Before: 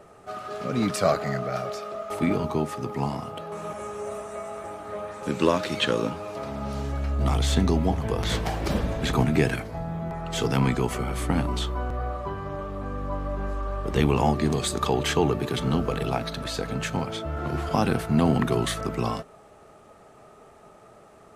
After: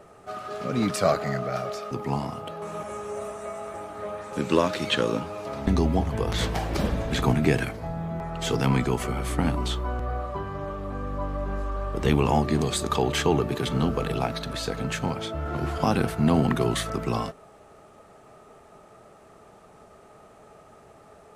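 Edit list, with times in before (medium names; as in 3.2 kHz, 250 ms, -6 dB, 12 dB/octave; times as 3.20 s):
1.91–2.81 s: delete
6.57–7.58 s: delete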